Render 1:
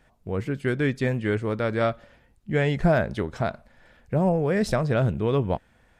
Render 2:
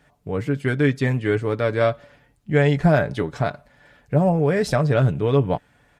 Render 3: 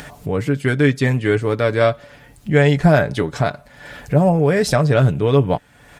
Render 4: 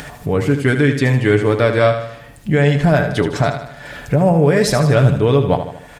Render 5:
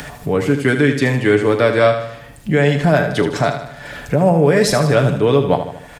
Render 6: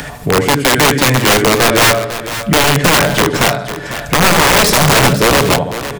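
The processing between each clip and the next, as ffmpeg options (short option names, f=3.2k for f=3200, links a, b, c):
-af "highpass=50,aecho=1:1:6.9:0.51,volume=2.5dB"
-filter_complex "[0:a]highshelf=f=4.2k:g=6,asplit=2[a][b];[b]acompressor=mode=upward:threshold=-19dB:ratio=2.5,volume=3dB[c];[a][c]amix=inputs=2:normalize=0,volume=-4dB"
-filter_complex "[0:a]alimiter=limit=-7.5dB:level=0:latency=1:release=172,asplit=2[a][b];[b]aecho=0:1:77|154|231|308|385|462:0.355|0.177|0.0887|0.0444|0.0222|0.0111[c];[a][c]amix=inputs=2:normalize=0,volume=3.5dB"
-filter_complex "[0:a]acrossover=split=140|550|2200[a][b][c][d];[a]acompressor=threshold=-33dB:ratio=6[e];[d]asplit=2[f][g];[g]adelay=39,volume=-11.5dB[h];[f][h]amix=inputs=2:normalize=0[i];[e][b][c][i]amix=inputs=4:normalize=0,volume=1dB"
-af "aeval=exprs='(mod(2.99*val(0)+1,2)-1)/2.99':c=same,aecho=1:1:500:0.251,volume=5.5dB"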